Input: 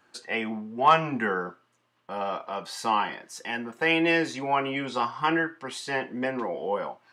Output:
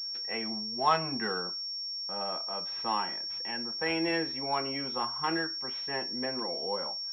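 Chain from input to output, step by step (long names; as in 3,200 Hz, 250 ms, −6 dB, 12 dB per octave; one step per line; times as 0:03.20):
switching amplifier with a slow clock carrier 5,500 Hz
level −6.5 dB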